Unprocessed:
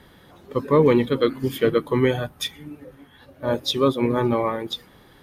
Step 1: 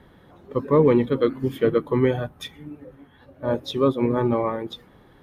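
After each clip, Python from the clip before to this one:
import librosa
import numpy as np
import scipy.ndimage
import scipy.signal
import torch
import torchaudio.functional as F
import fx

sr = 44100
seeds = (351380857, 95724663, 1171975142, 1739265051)

y = fx.high_shelf(x, sr, hz=2400.0, db=-12.0)
y = fx.notch(y, sr, hz=4800.0, q=20.0)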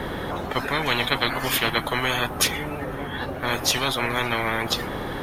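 y = fx.spectral_comp(x, sr, ratio=10.0)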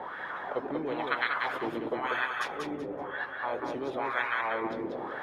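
y = fx.wah_lfo(x, sr, hz=1.0, low_hz=300.0, high_hz=1700.0, q=3.1)
y = fx.echo_feedback(y, sr, ms=190, feedback_pct=22, wet_db=-4)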